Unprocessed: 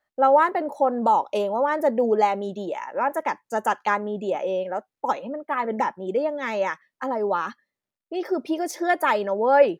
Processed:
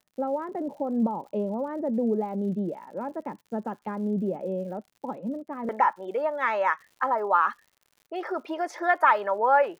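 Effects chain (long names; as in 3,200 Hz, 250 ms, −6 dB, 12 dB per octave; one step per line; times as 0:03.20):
downward compressor 2 to 1, threshold −22 dBFS, peak gain reduction 7 dB
resonant band-pass 170 Hz, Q 1.7, from 0:05.69 1,200 Hz
surface crackle 120 per second −54 dBFS
level +8 dB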